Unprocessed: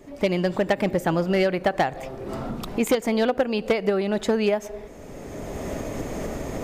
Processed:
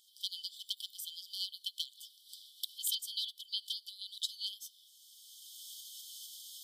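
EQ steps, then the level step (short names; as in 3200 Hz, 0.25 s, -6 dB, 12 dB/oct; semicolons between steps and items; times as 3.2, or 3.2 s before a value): brick-wall FIR high-pass 3000 Hz; bell 6700 Hz -12 dB 0.35 oct; +2.5 dB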